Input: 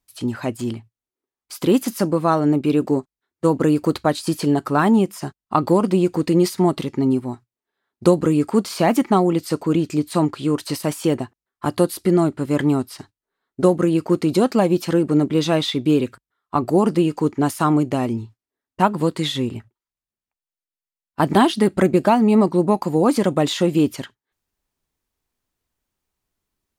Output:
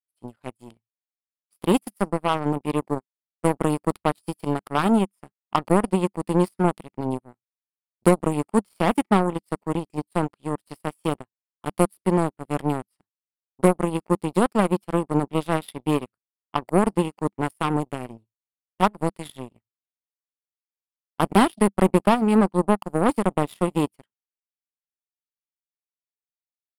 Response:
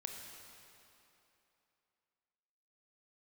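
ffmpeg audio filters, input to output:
-af "aeval=exprs='0.891*(cos(1*acos(clip(val(0)/0.891,-1,1)))-cos(1*PI/2))+0.126*(cos(7*acos(clip(val(0)/0.891,-1,1)))-cos(7*PI/2))':c=same,equalizer=f=200:t=o:w=0.33:g=4,equalizer=f=1600:t=o:w=0.33:g=-3,equalizer=f=4000:t=o:w=0.33:g=-5,equalizer=f=6300:t=o:w=0.33:g=-11,equalizer=f=10000:t=o:w=0.33:g=10,volume=0.75"

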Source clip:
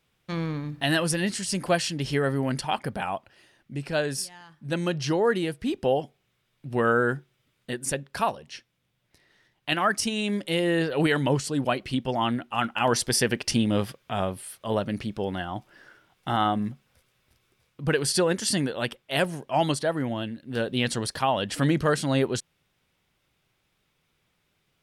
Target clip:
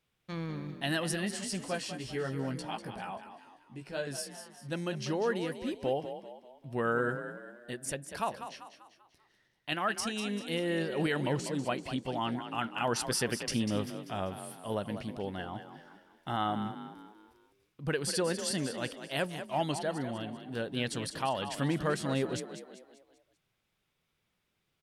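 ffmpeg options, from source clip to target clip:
-filter_complex "[0:a]asettb=1/sr,asplit=3[s0][s1][s2];[s0]atrim=end=1.614[s3];[s1]atrim=start=1.61:end=4.07,asetpts=PTS-STARTPTS,afade=t=in:d=0.004:c=qsin,afade=t=out:st=2.456:d=0.004:c=qsin,flanger=delay=15:depth=2.1:speed=1.2[s4];[s2]atrim=start=4.066[s5];[s3][s4]acrossfade=d=0.004:c1=hsin:c2=qsin[s6];[s6][s5]acrossfade=d=0.004:c1=qsin:c2=hsin,asplit=6[s7][s8][s9][s10][s11][s12];[s8]adelay=195,afreqshift=37,volume=0.316[s13];[s9]adelay=390,afreqshift=74,volume=0.14[s14];[s10]adelay=585,afreqshift=111,volume=0.061[s15];[s11]adelay=780,afreqshift=148,volume=0.0269[s16];[s12]adelay=975,afreqshift=185,volume=0.0119[s17];[s7][s13][s14][s15][s16][s17]amix=inputs=6:normalize=0,volume=0.398"

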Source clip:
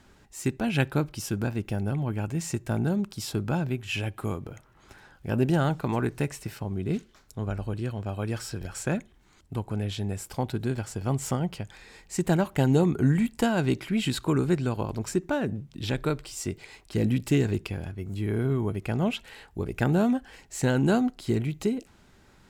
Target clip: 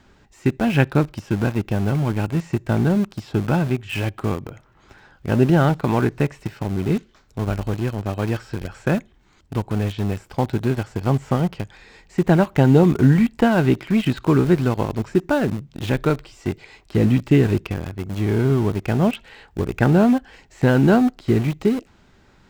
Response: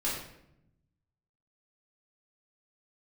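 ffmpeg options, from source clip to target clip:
-filter_complex "[0:a]acrossover=split=2900[s0][s1];[s1]acompressor=threshold=0.00355:ratio=4:attack=1:release=60[s2];[s0][s2]amix=inputs=2:normalize=0,equalizer=f=11000:w=1.2:g=-14.5,asplit=2[s3][s4];[s4]aeval=exprs='val(0)*gte(abs(val(0)),0.0299)':c=same,volume=0.708[s5];[s3][s5]amix=inputs=2:normalize=0,volume=1.5"

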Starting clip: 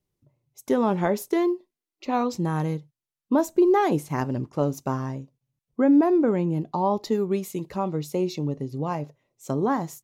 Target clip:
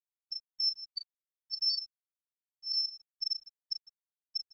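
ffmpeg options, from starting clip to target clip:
-filter_complex "[0:a]lowpass=f=2400:t=q:w=0.5098,lowpass=f=2400:t=q:w=0.6013,lowpass=f=2400:t=q:w=0.9,lowpass=f=2400:t=q:w=2.563,afreqshift=-2800,afftfilt=real='re*gte(hypot(re,im),0.794)':imag='im*gte(hypot(re,im),0.794)':win_size=1024:overlap=0.75,lowshelf=f=140:g=-10.5,bandreject=f=1100:w=18,bandreject=f=178.2:t=h:w=4,bandreject=f=356.4:t=h:w=4,bandreject=f=534.6:t=h:w=4,bandreject=f=712.8:t=h:w=4,bandreject=f=891:t=h:w=4,bandreject=f=1069.2:t=h:w=4,bandreject=f=1247.4:t=h:w=4,bandreject=f=1425.6:t=h:w=4,areverse,acompressor=threshold=0.0447:ratio=20,areverse,afftfilt=real='hypot(re,im)*cos(PI*b)':imag='0':win_size=512:overlap=0.75,asetrate=97461,aresample=44100,asplit=2[s0][s1];[s1]adelay=37,volume=0.447[s2];[s0][s2]amix=inputs=2:normalize=0,asplit=2[s3][s4];[s4]aecho=0:1:156|312|468:0.2|0.0638|0.0204[s5];[s3][s5]amix=inputs=2:normalize=0,afftfilt=real='re*gte(hypot(re,im),0.0708)':imag='im*gte(hypot(re,im),0.0708)':win_size=1024:overlap=0.75" -ar 16000 -c:a pcm_mulaw

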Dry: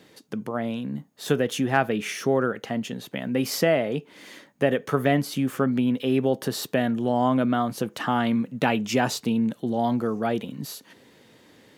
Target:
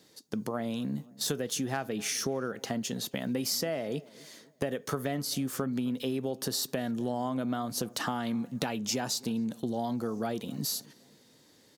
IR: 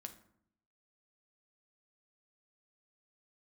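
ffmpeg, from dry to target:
-filter_complex "[0:a]highshelf=f=3600:t=q:w=1.5:g=8,agate=range=0.355:threshold=0.0126:ratio=16:detection=peak,acompressor=threshold=0.0355:ratio=6,asplit=2[s0][s1];[s1]adelay=262,lowpass=f=1300:p=1,volume=0.0841,asplit=2[s2][s3];[s3]adelay=262,lowpass=f=1300:p=1,volume=0.47,asplit=2[s4][s5];[s5]adelay=262,lowpass=f=1300:p=1,volume=0.47[s6];[s2][s4][s6]amix=inputs=3:normalize=0[s7];[s0][s7]amix=inputs=2:normalize=0"

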